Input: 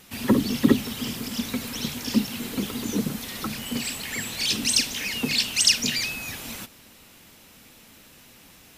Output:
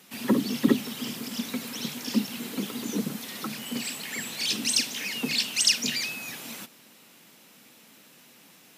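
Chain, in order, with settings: HPF 150 Hz 24 dB/oct; gain -3 dB

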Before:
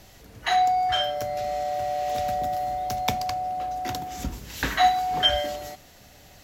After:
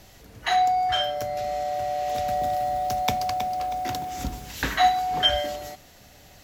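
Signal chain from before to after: 1.99–4.52 lo-fi delay 0.319 s, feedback 35%, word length 7-bit, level -9 dB

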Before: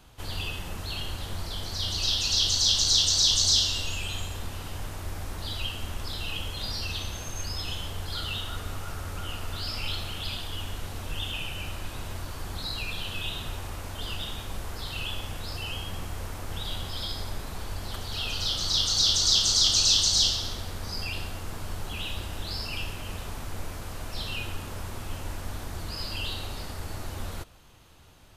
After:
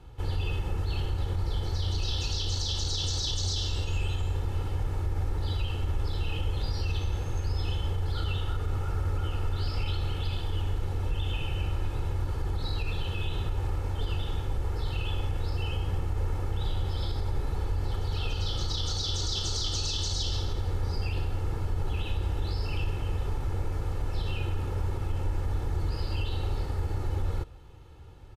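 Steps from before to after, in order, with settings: HPF 110 Hz 6 dB/oct; tilt -3.5 dB/oct; comb 2.3 ms, depth 59%; limiter -19 dBFS, peak gain reduction 7.5 dB; gain -1.5 dB

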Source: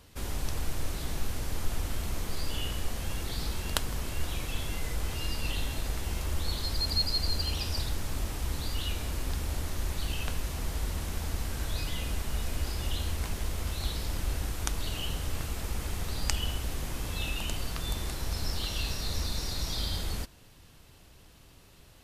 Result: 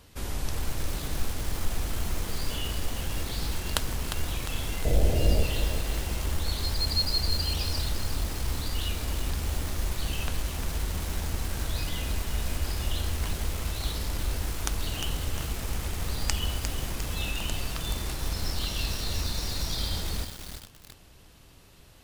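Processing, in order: 4.85–5.43 resonant low shelf 800 Hz +9 dB, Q 3; lo-fi delay 0.353 s, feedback 55%, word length 6-bit, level -7 dB; gain +1.5 dB

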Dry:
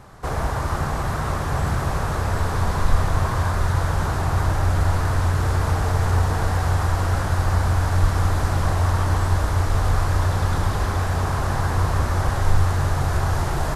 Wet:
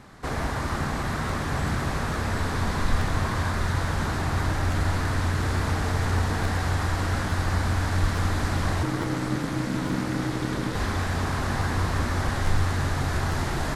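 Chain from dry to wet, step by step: ten-band EQ 250 Hz +10 dB, 2000 Hz +7 dB, 4000 Hz +6 dB, 8000 Hz +3 dB; 8.83–10.75 ring modulator 220 Hz; crackling interface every 0.86 s, samples 512, repeat, from 0.41; gain -6.5 dB

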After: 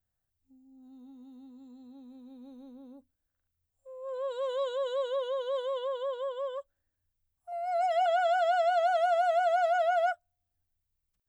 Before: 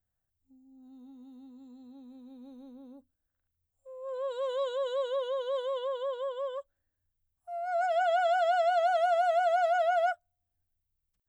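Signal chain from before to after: 7.52–8.06 comb 1 ms, depth 87%

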